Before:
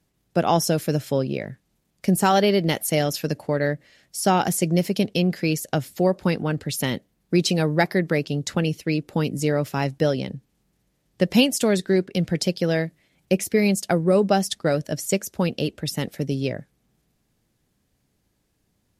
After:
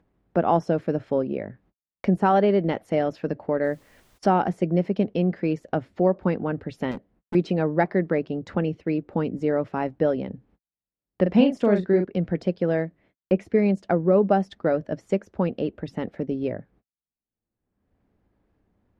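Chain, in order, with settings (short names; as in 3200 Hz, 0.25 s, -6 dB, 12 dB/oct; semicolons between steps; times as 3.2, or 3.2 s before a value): LPF 1400 Hz 12 dB/oct; gate -55 dBFS, range -52 dB; bell 140 Hz -13.5 dB 0.25 oct; upward compressor, threshold -27 dBFS; 3.63–4.17 added noise pink -60 dBFS; 6.91–7.35 overloaded stage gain 28.5 dB; 11.22–12.05 doubler 39 ms -6 dB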